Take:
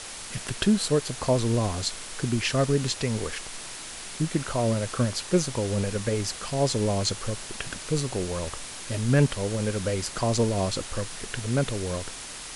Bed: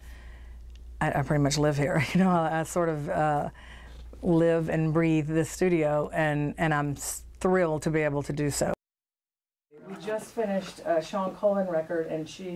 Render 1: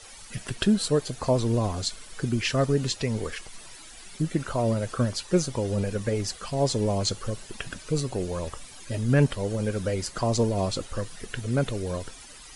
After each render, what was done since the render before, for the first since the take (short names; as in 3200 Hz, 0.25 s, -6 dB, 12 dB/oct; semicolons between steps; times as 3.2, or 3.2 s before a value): denoiser 13 dB, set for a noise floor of -39 dBFS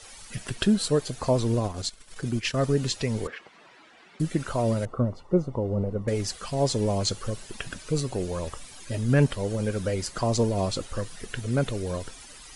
1.54–2.64 transient shaper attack -4 dB, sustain -11 dB; 3.27–4.2 BPF 230–2200 Hz; 4.85–6.08 polynomial smoothing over 65 samples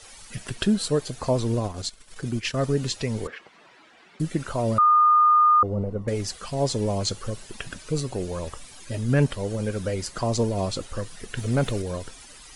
4.78–5.63 bleep 1220 Hz -13.5 dBFS; 11.37–11.82 sample leveller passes 1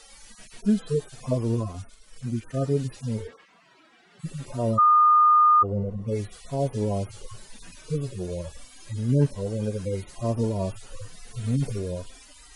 median-filter separation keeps harmonic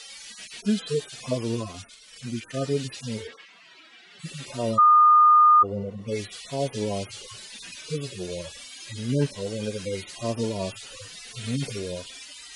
weighting filter D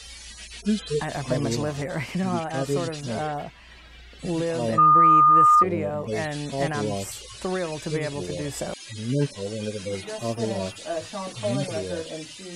add bed -4 dB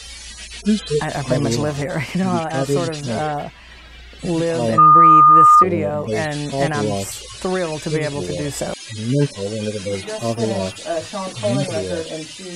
gain +6.5 dB